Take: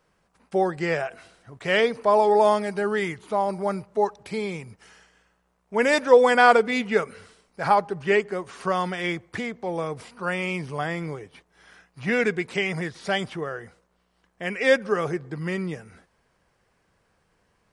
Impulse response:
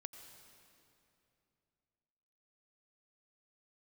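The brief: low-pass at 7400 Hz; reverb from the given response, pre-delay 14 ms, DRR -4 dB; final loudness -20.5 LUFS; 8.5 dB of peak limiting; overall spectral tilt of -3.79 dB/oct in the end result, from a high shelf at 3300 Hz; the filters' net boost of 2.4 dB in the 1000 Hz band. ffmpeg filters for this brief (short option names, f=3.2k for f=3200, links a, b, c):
-filter_complex "[0:a]lowpass=7.4k,equalizer=f=1k:t=o:g=3.5,highshelf=f=3.3k:g=-3.5,alimiter=limit=-11.5dB:level=0:latency=1,asplit=2[a][b];[1:a]atrim=start_sample=2205,adelay=14[c];[b][c]afir=irnorm=-1:irlink=0,volume=8.5dB[d];[a][d]amix=inputs=2:normalize=0,volume=-0.5dB"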